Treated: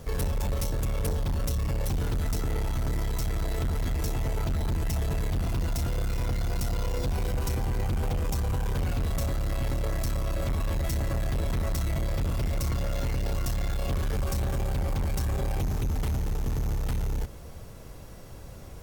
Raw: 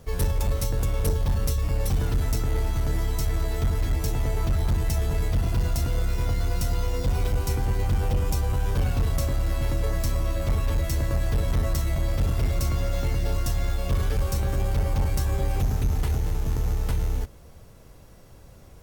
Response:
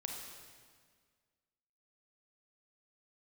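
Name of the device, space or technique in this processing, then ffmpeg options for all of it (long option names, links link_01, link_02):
limiter into clipper: -af "alimiter=limit=-24dB:level=0:latency=1,asoftclip=type=hard:threshold=-29.5dB,volume=5dB"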